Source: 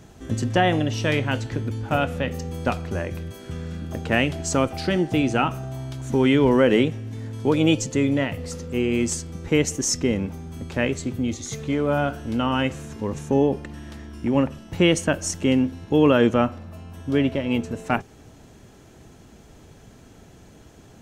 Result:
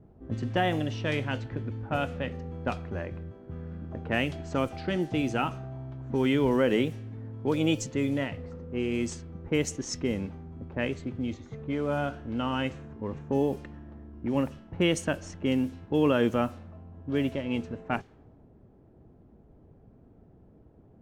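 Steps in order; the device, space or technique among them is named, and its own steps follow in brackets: cassette deck with a dynamic noise filter (white noise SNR 30 dB; level-controlled noise filter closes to 550 Hz, open at -16 dBFS); trim -7 dB

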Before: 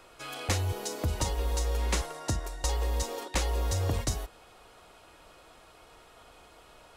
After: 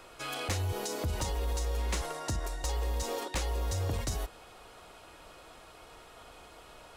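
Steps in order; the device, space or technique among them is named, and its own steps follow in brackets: clipper into limiter (hard clipper -21.5 dBFS, distortion -25 dB; peak limiter -28 dBFS, peak gain reduction 6.5 dB); trim +2.5 dB

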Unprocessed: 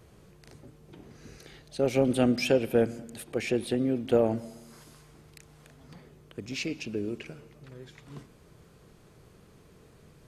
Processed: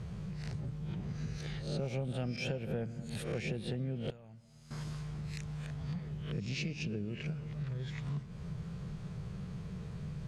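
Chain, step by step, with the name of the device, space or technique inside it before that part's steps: reverse spectral sustain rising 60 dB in 0.38 s; jukebox (low-pass 6.3 kHz 12 dB/octave; resonant low shelf 220 Hz +7.5 dB, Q 3; compression 6:1, threshold -39 dBFS, peak gain reduction 20 dB); 4.10–4.71 s: amplifier tone stack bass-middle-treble 5-5-5; trim +4 dB

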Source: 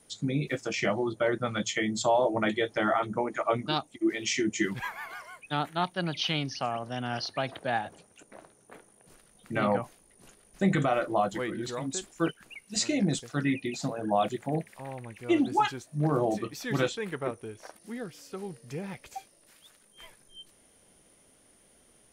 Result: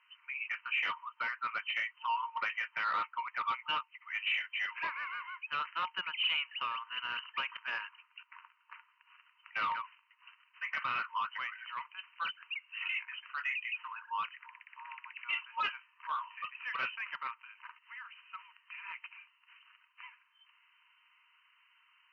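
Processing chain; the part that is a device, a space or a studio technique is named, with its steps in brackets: FFT band-pass 910–3100 Hz; 13.99–14.90 s: distance through air 300 m; overdrive pedal into a guitar cabinet (overdrive pedal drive 16 dB, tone 3.2 kHz, clips at -18.5 dBFS; cabinet simulation 80–4300 Hz, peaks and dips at 190 Hz +4 dB, 560 Hz +7 dB, 1.7 kHz -4 dB, 2.7 kHz +7 dB); trim -6 dB

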